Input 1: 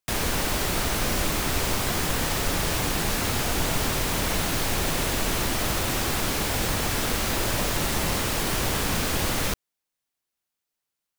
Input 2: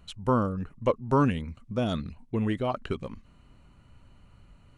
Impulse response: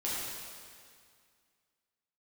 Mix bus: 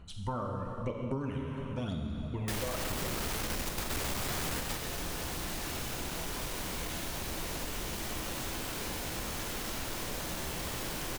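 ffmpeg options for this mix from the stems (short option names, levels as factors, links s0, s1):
-filter_complex "[0:a]volume=23.7,asoftclip=hard,volume=0.0422,adelay=2400,volume=1,asplit=3[s0][s1][s2];[s1]volume=0.178[s3];[s2]volume=0.316[s4];[1:a]aphaser=in_gain=1:out_gain=1:delay=1.9:decay=0.65:speed=0.96:type=sinusoidal,volume=0.355,asplit=3[s5][s6][s7];[s6]volume=0.708[s8];[s7]apad=whole_len=599129[s9];[s0][s9]sidechaingate=range=0.0224:threshold=0.00126:ratio=16:detection=peak[s10];[2:a]atrim=start_sample=2205[s11];[s3][s8]amix=inputs=2:normalize=0[s12];[s12][s11]afir=irnorm=-1:irlink=0[s13];[s4]aecho=0:1:97:1[s14];[s10][s5][s13][s14]amix=inputs=4:normalize=0,acompressor=threshold=0.0251:ratio=6"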